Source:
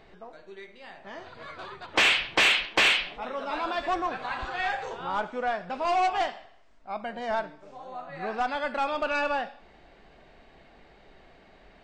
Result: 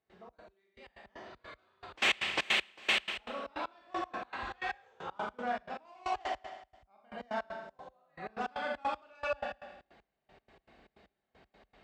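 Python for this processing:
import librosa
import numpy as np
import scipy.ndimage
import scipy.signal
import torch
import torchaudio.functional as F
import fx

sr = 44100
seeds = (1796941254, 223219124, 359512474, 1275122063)

p1 = x + fx.echo_feedback(x, sr, ms=107, feedback_pct=47, wet_db=-8.0, dry=0)
p2 = fx.rev_schroeder(p1, sr, rt60_s=0.45, comb_ms=29, drr_db=0.5)
p3 = fx.step_gate(p2, sr, bpm=156, pattern='.xx.x...x.x', floor_db=-24.0, edge_ms=4.5)
p4 = scipy.signal.sosfilt(scipy.signal.butter(4, 44.0, 'highpass', fs=sr, output='sos'), p3)
y = p4 * librosa.db_to_amplitude(-9.0)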